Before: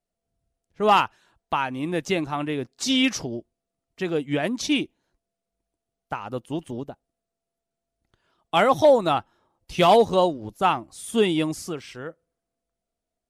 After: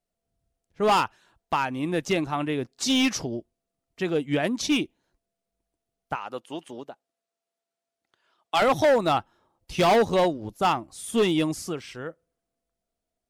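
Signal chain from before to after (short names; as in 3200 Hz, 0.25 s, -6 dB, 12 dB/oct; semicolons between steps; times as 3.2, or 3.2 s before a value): 6.15–8.62 weighting filter A; overloaded stage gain 16 dB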